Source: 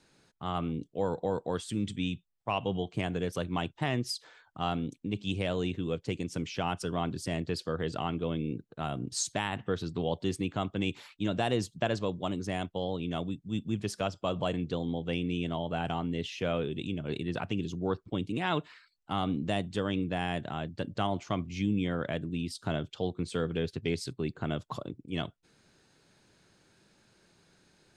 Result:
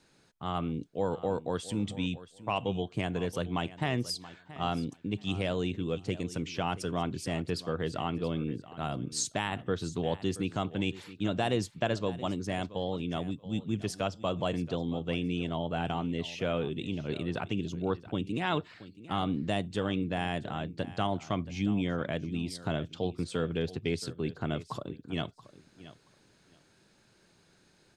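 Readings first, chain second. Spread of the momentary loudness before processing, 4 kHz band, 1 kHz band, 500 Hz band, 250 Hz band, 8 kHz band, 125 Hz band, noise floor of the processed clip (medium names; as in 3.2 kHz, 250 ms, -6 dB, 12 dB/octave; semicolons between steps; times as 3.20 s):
5 LU, 0.0 dB, 0.0 dB, 0.0 dB, 0.0 dB, 0.0 dB, 0.0 dB, -65 dBFS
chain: feedback delay 677 ms, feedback 18%, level -16.5 dB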